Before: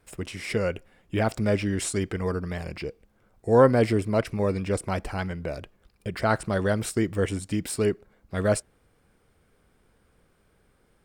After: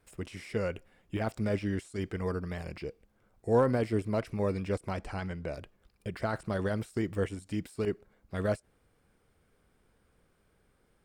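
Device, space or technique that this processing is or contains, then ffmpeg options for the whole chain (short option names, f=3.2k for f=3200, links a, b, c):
de-esser from a sidechain: -filter_complex "[0:a]asettb=1/sr,asplit=3[a][b][c];[a]atrim=end=4.924[d];[b]atrim=start=4.92:end=5.54,asetpts=PTS-STARTPTS,afade=t=in:d=0.004:c=qsin,afade=t=out:st=0.616:d=0.004:c=qsin,lowpass=f=9.9k:w=0.5412,lowpass=f=9.9k:w=1.3066[e];[c]atrim=start=5.536[f];[d][e]acrossfade=d=0.004:c1=hsin:c2=qsin[g];[g][f]acrossfade=d=0.004:c1=qsin:c2=hsin,asplit=2[h][i];[i]highpass=5.4k,apad=whole_len=487281[j];[h][j]sidechaincompress=threshold=-46dB:ratio=10:attack=0.95:release=45,volume=-5dB"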